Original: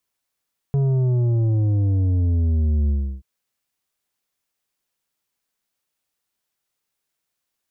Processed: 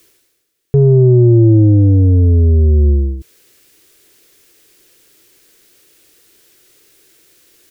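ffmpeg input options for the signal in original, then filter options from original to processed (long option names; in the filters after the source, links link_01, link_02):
-f lavfi -i "aevalsrc='0.141*clip((2.48-t)/0.33,0,1)*tanh(2.51*sin(2*PI*140*2.48/log(65/140)*(exp(log(65/140)*t/2.48)-1)))/tanh(2.51)':duration=2.48:sample_rate=44100"
-af "firequalizer=gain_entry='entry(130,0);entry(230,-5);entry(330,9);entry(600,0);entry(1600,10)':delay=0.05:min_phase=1,areverse,acompressor=mode=upward:threshold=-34dB:ratio=2.5,areverse,lowshelf=frequency=640:width_type=q:width=1.5:gain=9.5"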